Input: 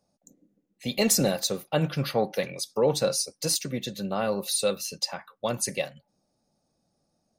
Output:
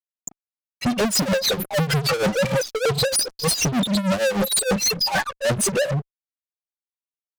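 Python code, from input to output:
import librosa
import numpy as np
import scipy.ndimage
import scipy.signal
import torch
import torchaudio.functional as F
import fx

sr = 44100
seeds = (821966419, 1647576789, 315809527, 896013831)

y = fx.spec_expand(x, sr, power=3.8)
y = fx.rider(y, sr, range_db=4, speed_s=0.5)
y = fx.fuzz(y, sr, gain_db=51.0, gate_db=-56.0)
y = fx.granulator(y, sr, seeds[0], grain_ms=210.0, per_s=6.5, spray_ms=20.0, spread_st=0)
y = y * 10.0 ** (-4.0 / 20.0)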